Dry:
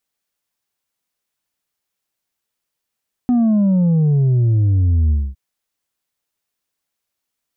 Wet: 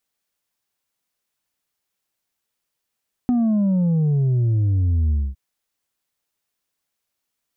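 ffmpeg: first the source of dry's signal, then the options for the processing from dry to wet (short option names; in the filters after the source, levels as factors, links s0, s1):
-f lavfi -i "aevalsrc='0.251*clip((2.06-t)/0.24,0,1)*tanh(1.5*sin(2*PI*250*2.06/log(65/250)*(exp(log(65/250)*t/2.06)-1)))/tanh(1.5)':d=2.06:s=44100"
-af "acompressor=threshold=0.126:ratio=4"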